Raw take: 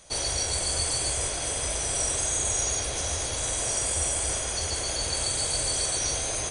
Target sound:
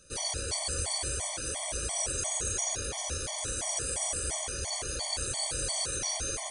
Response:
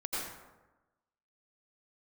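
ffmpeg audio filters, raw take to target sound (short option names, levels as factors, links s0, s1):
-filter_complex "[0:a]asplit=2[s0][s1];[1:a]atrim=start_sample=2205,asetrate=61740,aresample=44100[s2];[s1][s2]afir=irnorm=-1:irlink=0,volume=0.398[s3];[s0][s3]amix=inputs=2:normalize=0,afftfilt=real='re*gt(sin(2*PI*2.9*pts/sr)*(1-2*mod(floor(b*sr/1024/600),2)),0)':imag='im*gt(sin(2*PI*2.9*pts/sr)*(1-2*mod(floor(b*sr/1024/600),2)),0)':win_size=1024:overlap=0.75,volume=0.631"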